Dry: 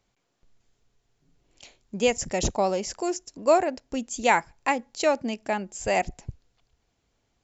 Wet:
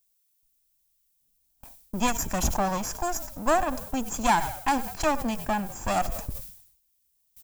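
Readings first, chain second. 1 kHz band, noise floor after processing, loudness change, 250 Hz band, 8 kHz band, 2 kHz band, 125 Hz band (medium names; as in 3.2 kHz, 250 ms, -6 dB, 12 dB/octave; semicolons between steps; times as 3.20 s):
+1.0 dB, -71 dBFS, -1.5 dB, +0.5 dB, no reading, -3.0 dB, +3.0 dB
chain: comb filter that takes the minimum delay 1.2 ms; graphic EQ 125/500/2000/4000 Hz -9/-8/-6/-8 dB; in parallel at 0 dB: compression, threshold -38 dBFS, peak gain reduction 16 dB; on the sum: level-controlled noise filter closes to 770 Hz, open at -27.5 dBFS; on a send: frequency-shifting echo 99 ms, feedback 50%, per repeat -47 Hz, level -21 dB; on the sum: added noise violet -52 dBFS; gate with hold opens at -38 dBFS; decay stretcher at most 80 dB/s; trim +2.5 dB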